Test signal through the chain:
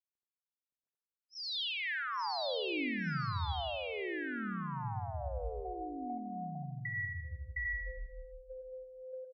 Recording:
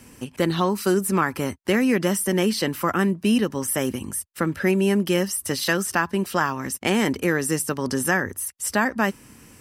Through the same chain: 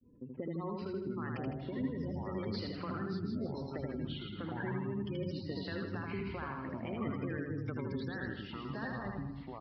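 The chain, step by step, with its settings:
gate on every frequency bin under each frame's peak −15 dB strong
downward expander −44 dBFS
low-pass that shuts in the quiet parts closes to 590 Hz, open at −16.5 dBFS
mains-hum notches 60/120/180 Hz
brickwall limiter −17.5 dBFS
downward compressor, threshold −29 dBFS
shaped tremolo triangle 3.3 Hz, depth 40%
repeating echo 79 ms, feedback 50%, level −3 dB
delay with pitch and tempo change per echo 508 ms, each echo −6 semitones, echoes 2
downsampling to 11,025 Hz
level −7.5 dB

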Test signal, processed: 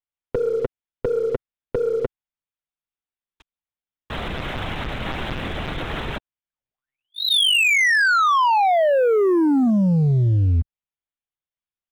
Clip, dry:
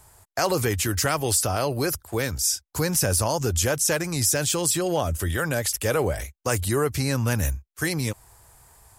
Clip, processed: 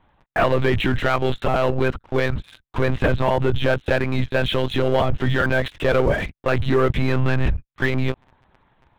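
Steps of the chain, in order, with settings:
one-pitch LPC vocoder at 8 kHz 130 Hz
leveller curve on the samples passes 2

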